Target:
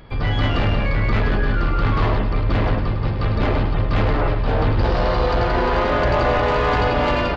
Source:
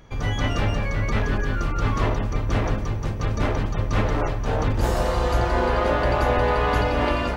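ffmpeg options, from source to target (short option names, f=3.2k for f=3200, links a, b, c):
-af "aresample=11025,aresample=44100,aresample=16000,asoftclip=type=tanh:threshold=-18dB,aresample=44100,acontrast=38,aecho=1:1:104:0.422"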